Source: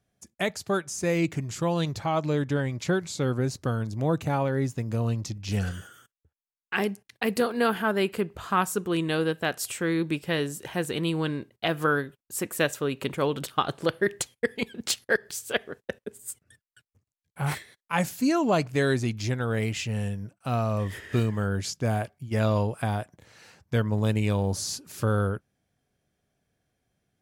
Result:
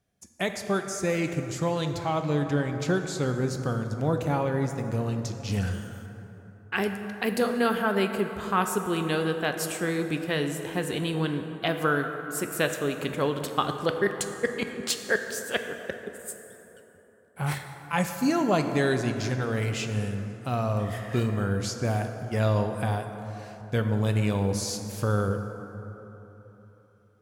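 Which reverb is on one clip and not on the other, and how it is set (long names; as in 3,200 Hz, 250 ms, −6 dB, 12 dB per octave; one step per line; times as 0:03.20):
dense smooth reverb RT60 3.6 s, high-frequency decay 0.45×, DRR 6 dB
level −1 dB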